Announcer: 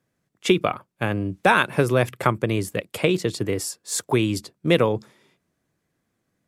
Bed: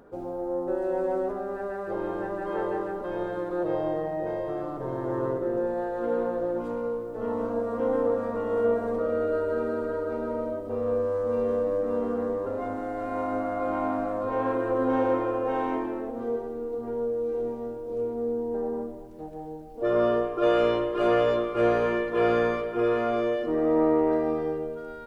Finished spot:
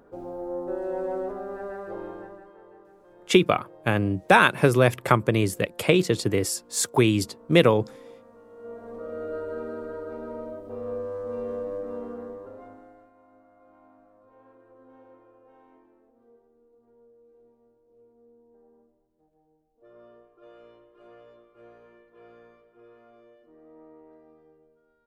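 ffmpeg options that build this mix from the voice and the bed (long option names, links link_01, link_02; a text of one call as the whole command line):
ffmpeg -i stem1.wav -i stem2.wav -filter_complex "[0:a]adelay=2850,volume=1dB[link_01];[1:a]volume=13.5dB,afade=type=out:start_time=1.74:duration=0.79:silence=0.105925,afade=type=in:start_time=8.57:duration=0.8:silence=0.158489,afade=type=out:start_time=11.75:duration=1.38:silence=0.0707946[link_02];[link_01][link_02]amix=inputs=2:normalize=0" out.wav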